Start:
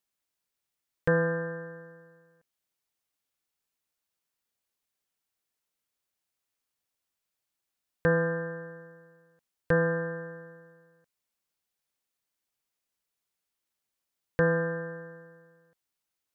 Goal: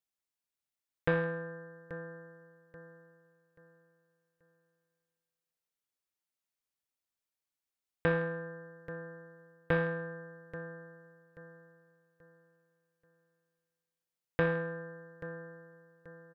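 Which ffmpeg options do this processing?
ffmpeg -i in.wav -af "aecho=1:1:833|1666|2499|3332:0.316|0.108|0.0366|0.0124,aeval=exprs='0.266*(cos(1*acos(clip(val(0)/0.266,-1,1)))-cos(1*PI/2))+0.0211*(cos(2*acos(clip(val(0)/0.266,-1,1)))-cos(2*PI/2))+0.0531*(cos(3*acos(clip(val(0)/0.266,-1,1)))-cos(3*PI/2))+0.00531*(cos(4*acos(clip(val(0)/0.266,-1,1)))-cos(4*PI/2))':channel_layout=same" out.wav

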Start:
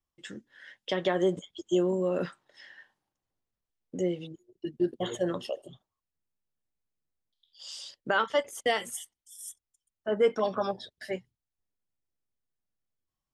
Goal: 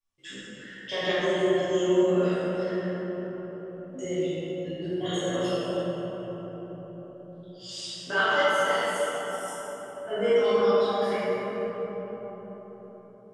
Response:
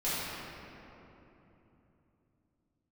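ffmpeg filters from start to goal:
-filter_complex "[0:a]aemphasis=mode=reproduction:type=75fm,crystalizer=i=8:c=0,asettb=1/sr,asplit=3[link_01][link_02][link_03];[link_01]atrim=end=8.444[link_04];[link_02]atrim=start=8.44:end=10.09,asetpts=PTS-STARTPTS,afade=type=in:duration=0.004:curve=qsin,afade=type=out:start_time=1.646:duration=0.004:curve=qsin,acrossover=split=940|5500[link_05][link_06][link_07];[link_05]acompressor=threshold=-32dB:ratio=4[link_08];[link_06]acompressor=threshold=-34dB:ratio=4[link_09];[link_07]acompressor=threshold=-40dB:ratio=4[link_10];[link_08][link_09][link_10]amix=inputs=3:normalize=0[link_11];[link_03]atrim=start=10.086[link_12];[link_04][link_11]acrossfade=duration=0.004:curve1=hsin:curve2=qsin[link_13];[link_13][link_12]acrossfade=duration=0.004:curve1=qsin:curve2=hsin,flanger=delay=15:depth=4.2:speed=0.34[link_14];[1:a]atrim=start_sample=2205,asetrate=24255,aresample=44100[link_15];[link_14][link_15]afir=irnorm=-1:irlink=0,volume=-8.5dB"

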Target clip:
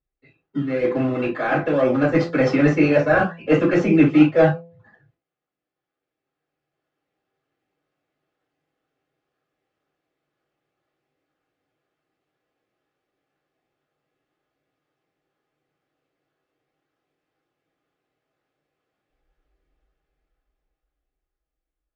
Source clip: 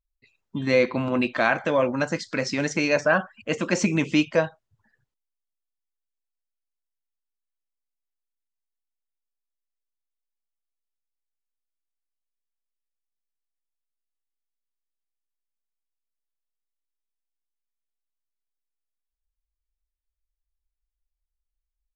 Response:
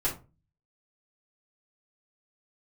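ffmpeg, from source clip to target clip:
-filter_complex "[0:a]asplit=2[link_01][link_02];[link_02]acrusher=samples=22:mix=1:aa=0.000001:lfo=1:lforange=13.2:lforate=2,volume=-7dB[link_03];[link_01][link_03]amix=inputs=2:normalize=0,highpass=130,lowpass=2600,areverse,acompressor=threshold=-25dB:ratio=16,areverse,bandreject=frequency=970:width=5.8,bandreject=frequency=168.8:width_type=h:width=4,bandreject=frequency=337.6:width_type=h:width=4,bandreject=frequency=506.4:width_type=h:width=4,bandreject=frequency=675.2:width_type=h:width=4,bandreject=frequency=844:width_type=h:width=4,bandreject=frequency=1012.8:width_type=h:width=4[link_04];[1:a]atrim=start_sample=2205,atrim=end_sample=3087[link_05];[link_04][link_05]afir=irnorm=-1:irlink=0,dynaudnorm=framelen=230:gausssize=17:maxgain=16dB,volume=-1dB"

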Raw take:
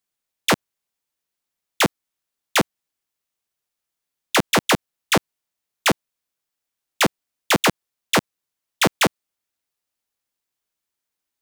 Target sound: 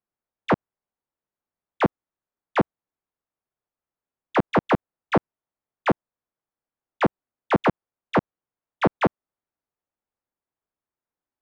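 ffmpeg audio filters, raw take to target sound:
ffmpeg -i in.wav -af "lowpass=1200" out.wav

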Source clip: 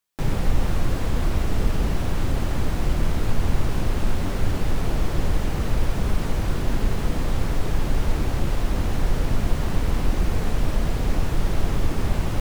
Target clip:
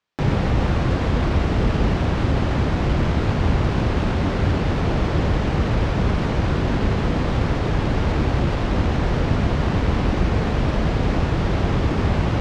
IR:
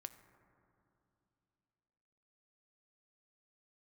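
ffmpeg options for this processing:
-af "lowpass=6300,adynamicsmooth=sensitivity=4.5:basefreq=4600,highpass=58,volume=7dB"

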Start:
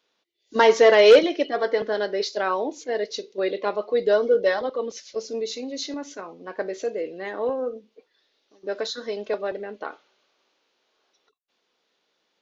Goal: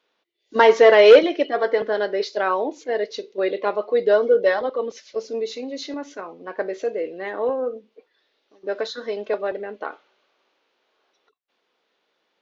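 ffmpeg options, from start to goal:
ffmpeg -i in.wav -af "bass=frequency=250:gain=-5,treble=frequency=4000:gain=-10,volume=3dB" out.wav

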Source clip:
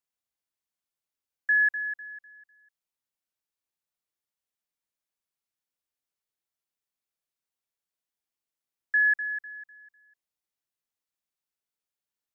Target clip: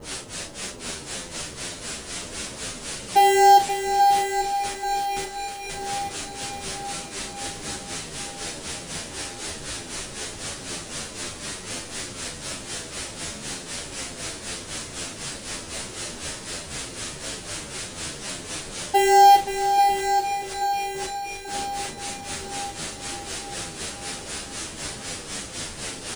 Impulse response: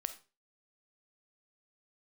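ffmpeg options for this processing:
-filter_complex "[0:a]aeval=exprs='val(0)+0.5*0.0119*sgn(val(0))':channel_layout=same,acrossover=split=1700[link_01][link_02];[link_01]aeval=exprs='val(0)*(1-1/2+1/2*cos(2*PI*8.4*n/s))':channel_layout=same[link_03];[link_02]aeval=exprs='val(0)*(1-1/2-1/2*cos(2*PI*8.4*n/s))':channel_layout=same[link_04];[link_03][link_04]amix=inputs=2:normalize=0,bandreject=frequency=1500:width=5.9,asetrate=20815,aresample=44100,asplit=2[link_05][link_06];[link_06]acrusher=samples=37:mix=1:aa=0.000001,volume=-5.5dB[link_07];[link_05][link_07]amix=inputs=2:normalize=0,asplit=2[link_08][link_09];[link_09]adelay=37,volume=-9dB[link_10];[link_08][link_10]amix=inputs=2:normalize=0,aecho=1:1:836|1672|2508|3344|4180|5016|5852:0.398|0.227|0.129|0.0737|0.042|0.024|0.0137,asplit=2[link_11][link_12];[1:a]atrim=start_sample=2205[link_13];[link_12][link_13]afir=irnorm=-1:irlink=0,volume=6.5dB[link_14];[link_11][link_14]amix=inputs=2:normalize=0,asplit=2[link_15][link_16];[link_16]adelay=10.1,afreqshift=-2.1[link_17];[link_15][link_17]amix=inputs=2:normalize=1,volume=8.5dB"

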